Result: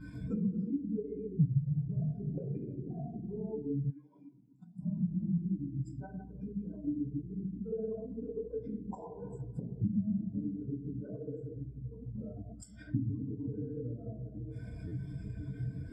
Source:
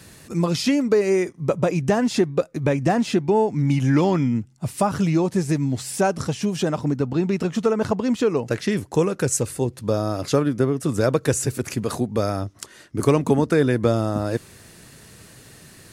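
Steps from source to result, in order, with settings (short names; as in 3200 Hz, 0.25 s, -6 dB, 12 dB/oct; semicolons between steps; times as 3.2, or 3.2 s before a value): ripple EQ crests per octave 1.7, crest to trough 10 dB; flipped gate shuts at -20 dBFS, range -29 dB; reverb RT60 1.9 s, pre-delay 4 ms, DRR -8 dB; hum 60 Hz, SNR 14 dB; 11.02–11.57 notch comb 810 Hz; backlash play -44 dBFS; compressor 12:1, threshold -37 dBFS, peak gain reduction 16 dB; 3.9–4.79 tilt +4 dB/oct; stuck buffer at 5.33/14.87, samples 512, times 3; spectral expander 2.5:1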